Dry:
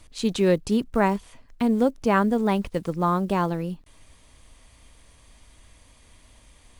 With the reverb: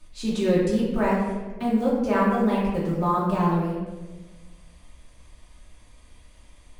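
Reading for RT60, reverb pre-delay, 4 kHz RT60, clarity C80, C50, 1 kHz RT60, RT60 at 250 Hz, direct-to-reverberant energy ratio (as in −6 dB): 1.3 s, 3 ms, 0.80 s, 3.0 dB, 1.0 dB, 1.1 s, 1.6 s, −7.5 dB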